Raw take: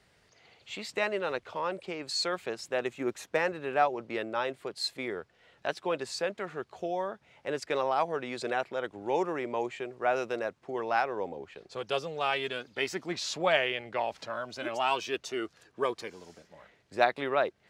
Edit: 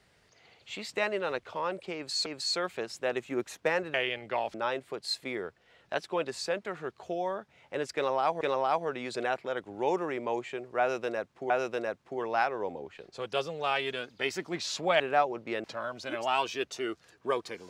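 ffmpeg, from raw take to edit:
-filter_complex "[0:a]asplit=8[a][b][c][d][e][f][g][h];[a]atrim=end=2.262[i];[b]atrim=start=1.948:end=3.632[j];[c]atrim=start=13.568:end=14.172[k];[d]atrim=start=4.268:end=8.142[l];[e]atrim=start=7.678:end=10.772[m];[f]atrim=start=10.068:end=13.572[n];[g]atrim=start=3.628:end=4.272[o];[h]atrim=start=14.168[p];[i][j]acrossfade=d=0.004:c1=hsin:c2=hsin[q];[q][k]acrossfade=d=0.004:c1=hsin:c2=hsin[r];[r][l]acrossfade=d=0.004:c1=hsin:c2=hsin[s];[s][m]acrossfade=d=0.004:c1=hsin:c2=hsin[t];[t][n]acrossfade=d=0.004:c1=hsin:c2=hsin[u];[u][o]acrossfade=d=0.004:c1=hsin:c2=hsin[v];[v][p]acrossfade=d=0.004:c1=hsin:c2=hsin"

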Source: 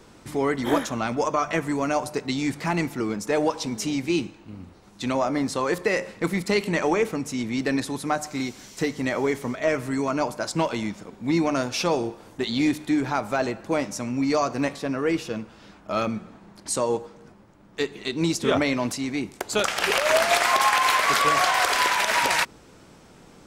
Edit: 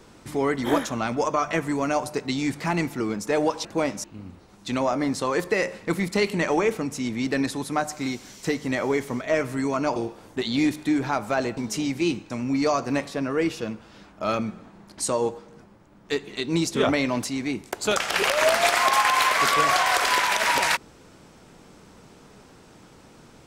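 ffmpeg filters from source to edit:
-filter_complex "[0:a]asplit=6[a][b][c][d][e][f];[a]atrim=end=3.652[g];[b]atrim=start=13.588:end=13.982[h];[c]atrim=start=4.378:end=10.302[i];[d]atrim=start=11.978:end=13.592[j];[e]atrim=start=3.648:end=4.382[k];[f]atrim=start=13.978[l];[g][h]acrossfade=d=0.004:c1=hsin:c2=hsin[m];[m][i]acrossfade=d=0.004:c1=hsin:c2=hsin[n];[n][j]acrossfade=d=0.004:c1=hsin:c2=hsin[o];[o][k]acrossfade=d=0.004:c1=hsin:c2=hsin[p];[p][l]acrossfade=d=0.004:c1=hsin:c2=hsin"

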